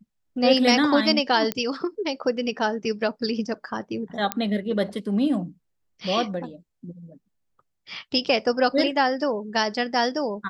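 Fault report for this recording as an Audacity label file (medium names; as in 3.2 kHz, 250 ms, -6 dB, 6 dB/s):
1.520000	1.520000	pop -10 dBFS
4.320000	4.320000	pop -7 dBFS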